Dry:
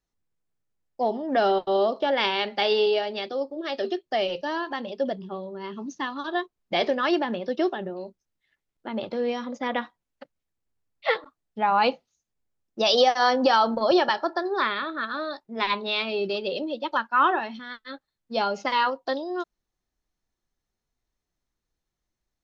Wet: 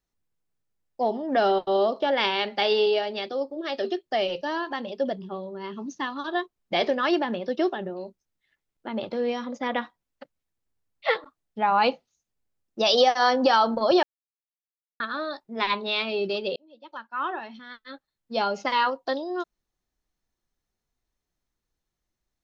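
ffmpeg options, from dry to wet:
ffmpeg -i in.wav -filter_complex "[0:a]asplit=4[link_01][link_02][link_03][link_04];[link_01]atrim=end=14.03,asetpts=PTS-STARTPTS,afade=type=out:start_time=14.026:duration=0.004:curve=hsin[link_05];[link_02]atrim=start=14.03:end=15,asetpts=PTS-STARTPTS,volume=0[link_06];[link_03]atrim=start=15:end=16.56,asetpts=PTS-STARTPTS,afade=type=in:duration=0.004:curve=hsin,afade=type=out:start_time=1.556:duration=0.004:curve=hsin[link_07];[link_04]atrim=start=16.56,asetpts=PTS-STARTPTS,afade=type=in:duration=1.91[link_08];[link_05][link_06][link_07][link_08]concat=n=4:v=0:a=1" out.wav

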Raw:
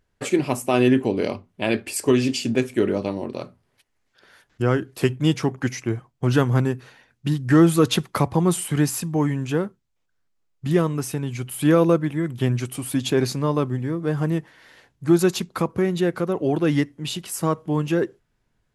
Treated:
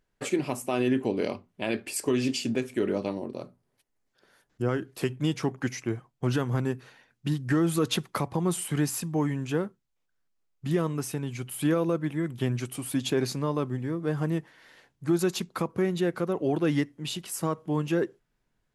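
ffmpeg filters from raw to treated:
ffmpeg -i in.wav -filter_complex "[0:a]asettb=1/sr,asplit=3[link_01][link_02][link_03];[link_01]atrim=end=3.194[link_04];[link_02]atrim=start=3.19:end=4.69,asetpts=PTS-STARTPTS,afade=type=in:duration=0.004:curve=qsin,afade=type=out:start_time=1.496:duration=0.004:curve=qsin,equalizer=frequency=2400:width=0.47:gain=-7.5[link_05];[link_03]atrim=start=4.686[link_06];[link_04][link_05]acrossfade=duration=0.004:curve1=hsin:curve2=qsin[link_07];[link_07][link_06]acrossfade=duration=0.004:curve1=qsin:curve2=hsin,equalizer=frequency=77:width_type=o:width=0.73:gain=-9.5,alimiter=limit=-11dB:level=0:latency=1:release=132,volume=-4.5dB" out.wav

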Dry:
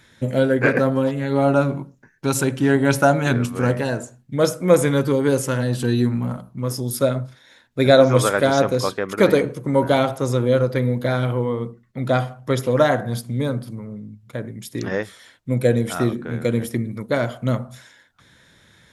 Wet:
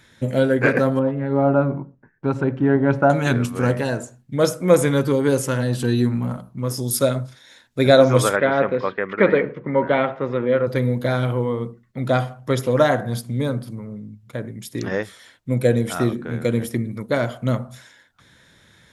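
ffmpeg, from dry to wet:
ffmpeg -i in.wav -filter_complex "[0:a]asettb=1/sr,asplit=3[link_01][link_02][link_03];[link_01]atrim=end=0.994[link_04];[link_02]atrim=start=0.99:end=3.1,asetpts=PTS-STARTPTS,afade=type=in:duration=0.004:curve=qsin,afade=type=out:start_time=2.106:duration=0.004:curve=qsin,lowpass=1400[link_05];[link_03]atrim=start=3.096[link_06];[link_04][link_05]acrossfade=duration=0.004:curve1=hsin:curve2=qsin[link_07];[link_07][link_06]acrossfade=duration=0.004:curve1=qsin:curve2=hsin,asettb=1/sr,asplit=3[link_08][link_09][link_10];[link_08]atrim=end=6.774[link_11];[link_09]atrim=start=6.77:end=7.79,asetpts=PTS-STARTPTS,afade=type=in:duration=0.004:curve=qsin,afade=type=out:start_time=1.016:duration=0.004:curve=qsin,equalizer=frequency=7700:width=0.47:gain=6.5[link_12];[link_10]atrim=start=7.786[link_13];[link_11][link_12]acrossfade=duration=0.004:curve1=hsin:curve2=qsin[link_14];[link_14][link_13]acrossfade=duration=0.004:curve1=qsin:curve2=hsin,asplit=3[link_15][link_16][link_17];[link_15]afade=type=out:start_time=8.35:duration=0.02[link_18];[link_16]highpass=100,equalizer=frequency=120:width_type=q:width=4:gain=-9,equalizer=frequency=290:width_type=q:width=4:gain=-4,equalizer=frequency=730:width_type=q:width=4:gain=-3,equalizer=frequency=1900:width_type=q:width=4:gain=7,lowpass=frequency=2800:width=0.5412,lowpass=frequency=2800:width=1.3066,afade=type=in:start_time=8.35:duration=0.02,afade=type=out:start_time=10.66:duration=0.02[link_19];[link_17]afade=type=in:start_time=10.66:duration=0.02[link_20];[link_18][link_19][link_20]amix=inputs=3:normalize=0" out.wav

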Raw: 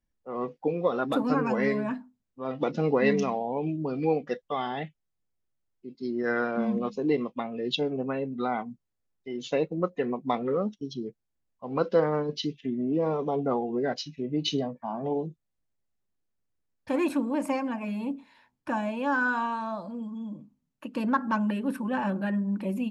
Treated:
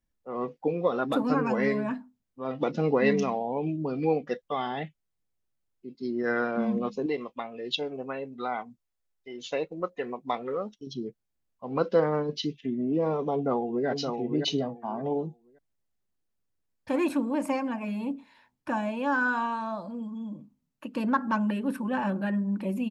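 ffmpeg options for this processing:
ffmpeg -i in.wav -filter_complex "[0:a]asettb=1/sr,asplit=3[link_01][link_02][link_03];[link_01]atrim=end=7.064[link_04];[link_02]atrim=start=7.06:end=10.87,asetpts=PTS-STARTPTS,afade=type=in:duration=0.004:curve=qsin,afade=type=out:start_time=3.806:duration=0.004:curve=qsin,equalizer=frequency=170:width=0.57:gain=-10.5[link_05];[link_03]atrim=start=10.866[link_06];[link_04][link_05]acrossfade=duration=0.004:curve1=hsin:curve2=qsin[link_07];[link_07][link_06]acrossfade=duration=0.004:curve1=qsin:curve2=hsin,asplit=2[link_08][link_09];[link_09]afade=type=in:start_time=13.33:duration=0.01,afade=type=out:start_time=13.87:duration=0.01,aecho=0:1:570|1140|1710:0.562341|0.112468|0.0224937[link_10];[link_08][link_10]amix=inputs=2:normalize=0" out.wav

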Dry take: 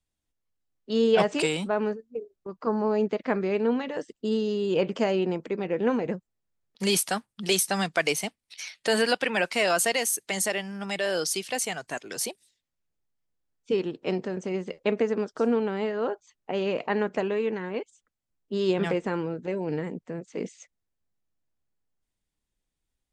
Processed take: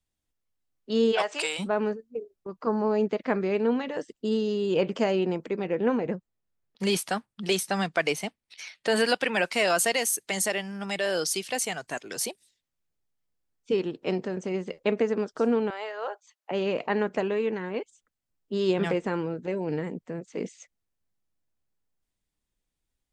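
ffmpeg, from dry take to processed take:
ffmpeg -i in.wav -filter_complex "[0:a]asplit=3[link_01][link_02][link_03];[link_01]afade=type=out:start_time=1.11:duration=0.02[link_04];[link_02]highpass=700,afade=type=in:start_time=1.11:duration=0.02,afade=type=out:start_time=1.58:duration=0.02[link_05];[link_03]afade=type=in:start_time=1.58:duration=0.02[link_06];[link_04][link_05][link_06]amix=inputs=3:normalize=0,asettb=1/sr,asplit=3[link_07][link_08][link_09];[link_07]atrim=end=5.754[link_10];[link_08]atrim=start=5.75:end=8.96,asetpts=PTS-STARTPTS,afade=type=in:duration=0.004:curve=qsin,afade=type=out:start_time=3.206:duration=0.004:curve=qsin,highshelf=frequency=4800:gain=-9[link_11];[link_09]atrim=start=8.956[link_12];[link_10][link_11]acrossfade=duration=0.004:curve1=hsin:curve2=qsin[link_13];[link_13][link_12]acrossfade=duration=0.004:curve1=qsin:curve2=hsin,asettb=1/sr,asplit=3[link_14][link_15][link_16];[link_14]atrim=end=15.704[link_17];[link_15]atrim=start=15.7:end=16.51,asetpts=PTS-STARTPTS,afade=type=in:duration=0.004:curve=qsin,afade=type=out:start_time=0.806:duration=0.004:curve=qsin,highpass=frequency=570:width=0.5412,highpass=frequency=570:width=1.3066[link_18];[link_16]atrim=start=16.506[link_19];[link_17][link_18]acrossfade=duration=0.004:curve1=hsin:curve2=qsin[link_20];[link_20][link_19]acrossfade=duration=0.004:curve1=qsin:curve2=hsin" out.wav

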